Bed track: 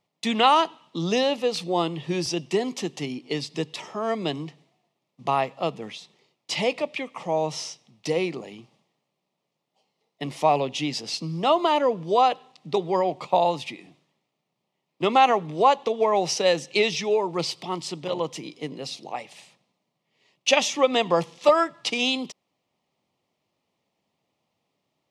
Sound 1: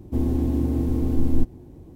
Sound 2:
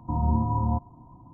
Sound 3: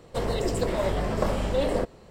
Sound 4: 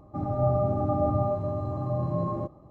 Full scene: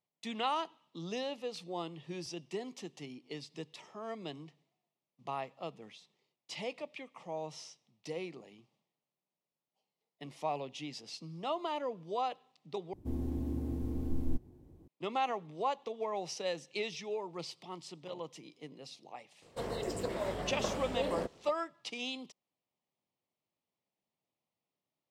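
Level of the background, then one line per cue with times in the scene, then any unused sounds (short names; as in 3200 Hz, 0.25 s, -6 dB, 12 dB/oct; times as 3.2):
bed track -15.5 dB
12.93 replace with 1 -13.5 dB
19.42 add 3 -9 dB + HPF 140 Hz 6 dB/oct
not used: 2, 4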